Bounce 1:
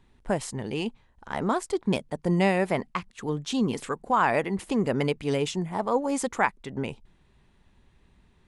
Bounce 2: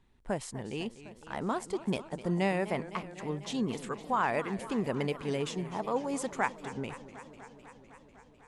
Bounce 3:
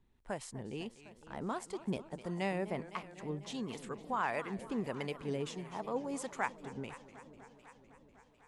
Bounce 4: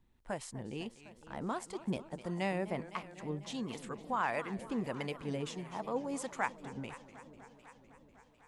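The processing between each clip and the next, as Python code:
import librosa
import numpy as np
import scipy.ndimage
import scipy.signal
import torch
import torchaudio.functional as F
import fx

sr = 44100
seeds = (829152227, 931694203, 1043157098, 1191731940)

y1 = fx.echo_warbled(x, sr, ms=251, feedback_pct=76, rate_hz=2.8, cents=172, wet_db=-15.0)
y1 = y1 * 10.0 ** (-6.5 / 20.0)
y2 = fx.harmonic_tremolo(y1, sr, hz=1.5, depth_pct=50, crossover_hz=620.0)
y2 = y2 * 10.0 ** (-3.5 / 20.0)
y3 = fx.notch(y2, sr, hz=410.0, q=12.0)
y3 = y3 * 10.0 ** (1.0 / 20.0)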